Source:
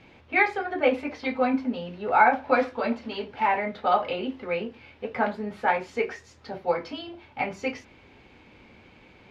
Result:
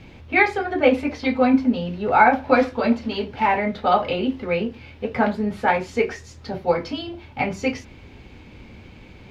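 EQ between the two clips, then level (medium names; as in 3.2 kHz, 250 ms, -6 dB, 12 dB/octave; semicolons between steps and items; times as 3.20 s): bass shelf 130 Hz +8.5 dB; bass shelf 430 Hz +7.5 dB; treble shelf 3.6 kHz +9.5 dB; +1.5 dB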